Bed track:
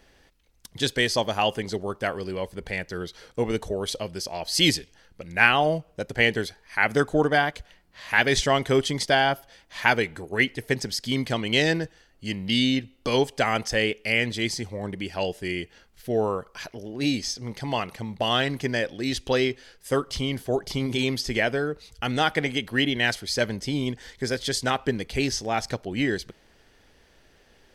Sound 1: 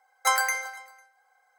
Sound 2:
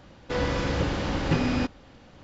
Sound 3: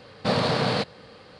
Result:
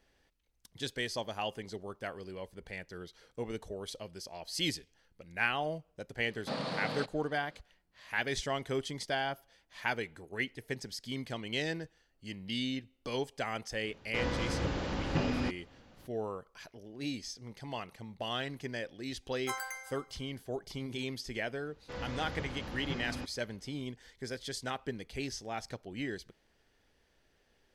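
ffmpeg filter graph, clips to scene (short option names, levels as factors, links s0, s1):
-filter_complex "[2:a]asplit=2[s0][s1];[0:a]volume=0.224[s2];[3:a]afreqshift=27[s3];[s1]equalizer=f=320:w=1.5:g=-3[s4];[s3]atrim=end=1.39,asetpts=PTS-STARTPTS,volume=0.211,afade=t=in:d=0.004:c=hsin,afade=t=out:st=1.386:d=0.004:c=hsin,adelay=6220[s5];[s0]atrim=end=2.23,asetpts=PTS-STARTPTS,volume=0.422,afade=t=in:d=0.004:c=hsin,afade=t=out:st=2.226:d=0.004:c=hsin,adelay=13840[s6];[1:a]atrim=end=1.58,asetpts=PTS-STARTPTS,volume=0.178,afade=t=in:d=0.004:c=hsin,afade=t=out:st=1.576:d=0.004:c=hsin,adelay=19220[s7];[s4]atrim=end=2.23,asetpts=PTS-STARTPTS,volume=0.2,afade=t=in:d=0.004:c=hsin,afade=t=out:st=2.226:d=0.004:c=hsin,adelay=21590[s8];[s2][s5][s6][s7][s8]amix=inputs=5:normalize=0"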